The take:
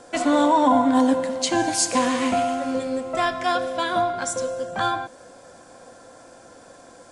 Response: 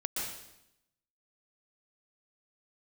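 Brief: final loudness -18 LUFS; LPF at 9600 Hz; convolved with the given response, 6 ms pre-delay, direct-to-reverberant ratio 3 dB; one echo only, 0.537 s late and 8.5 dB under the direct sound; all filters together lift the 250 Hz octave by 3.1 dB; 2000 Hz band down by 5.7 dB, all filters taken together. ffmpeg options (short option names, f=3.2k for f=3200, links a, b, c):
-filter_complex "[0:a]lowpass=9.6k,equalizer=f=250:t=o:g=3.5,equalizer=f=2k:t=o:g=-8,aecho=1:1:537:0.376,asplit=2[a][b];[1:a]atrim=start_sample=2205,adelay=6[c];[b][c]afir=irnorm=-1:irlink=0,volume=-7dB[d];[a][d]amix=inputs=2:normalize=0,volume=2dB"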